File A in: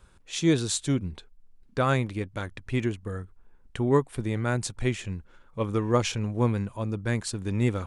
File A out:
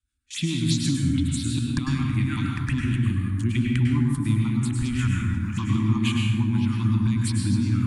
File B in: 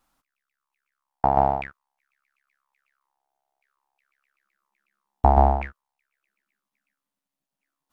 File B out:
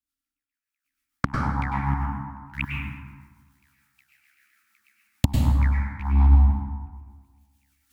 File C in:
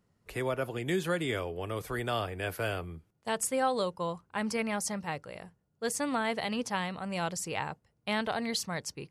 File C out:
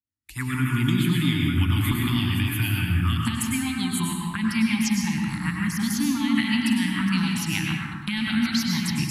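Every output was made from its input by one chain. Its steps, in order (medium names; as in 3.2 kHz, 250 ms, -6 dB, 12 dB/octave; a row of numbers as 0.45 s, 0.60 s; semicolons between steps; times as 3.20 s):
chunks repeated in reverse 529 ms, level -11.5 dB; recorder AGC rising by 18 dB/s; high-pass 51 Hz 12 dB/octave; gate with hold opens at -28 dBFS; Chebyshev band-stop 290–940 Hz, order 3; treble shelf 12 kHz +6.5 dB; compression 6:1, threshold -23 dBFS; touch-sensitive phaser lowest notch 170 Hz, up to 1.9 kHz, full sweep at -21.5 dBFS; rotary cabinet horn 6.7 Hz; plate-style reverb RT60 1.5 s, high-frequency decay 0.5×, pre-delay 90 ms, DRR -1 dB; normalise loudness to -24 LUFS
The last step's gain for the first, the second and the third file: +2.5 dB, +7.5 dB, +4.0 dB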